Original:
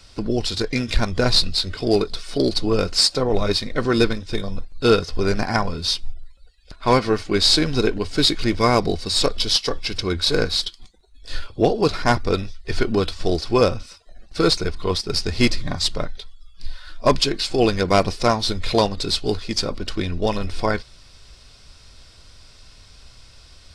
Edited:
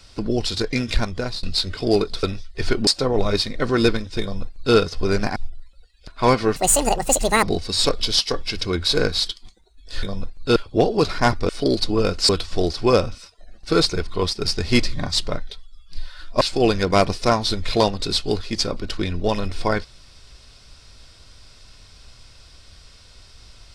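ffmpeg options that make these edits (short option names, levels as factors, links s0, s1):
-filter_complex "[0:a]asplit=12[s0][s1][s2][s3][s4][s5][s6][s7][s8][s9][s10][s11];[s0]atrim=end=1.43,asetpts=PTS-STARTPTS,afade=t=out:st=0.91:d=0.52:silence=0.0841395[s12];[s1]atrim=start=1.43:end=2.232,asetpts=PTS-STARTPTS,afade=t=in:d=0.004:c=hsin:silence=0.0841395[s13];[s2]atrim=start=12.328:end=12.972[s14];[s3]atrim=start=3.028:end=5.522[s15];[s4]atrim=start=5.998:end=7.204[s16];[s5]atrim=start=7.2:end=8.8,asetpts=PTS-STARTPTS,asetrate=81144,aresample=44100[s17];[s6]atrim=start=8.796:end=11.402[s18];[s7]atrim=start=4.378:end=4.912[s19];[s8]atrim=start=11.398:end=12.332[s20];[s9]atrim=start=2.228:end=3.032[s21];[s10]atrim=start=12.968:end=17.092[s22];[s11]atrim=start=17.388[s23];[s12][s13]concat=n=2:v=0:a=1[s24];[s24][s14]acrossfade=d=0.004:c1=hsin:c2=hsin[s25];[s25][s15]acrossfade=d=0.004:c1=hsin:c2=hsin[s26];[s26][s16]acrossfade=d=0.004:c1=hsin:c2=hsin[s27];[s27][s17]acrossfade=d=0.004:c1=hsin:c2=hsin[s28];[s28][s18]acrossfade=d=0.004:c1=hsin:c2=hsin[s29];[s29][s19]acrossfade=d=0.004:c1=hsin:c2=hsin[s30];[s30][s20]acrossfade=d=0.004:c1=hsin:c2=hsin[s31];[s31][s21]acrossfade=d=0.004:c1=hsin:c2=hsin[s32];[s32][s22]acrossfade=d=0.004:c1=hsin:c2=hsin[s33];[s33][s23]acrossfade=d=0.004:c1=hsin:c2=hsin"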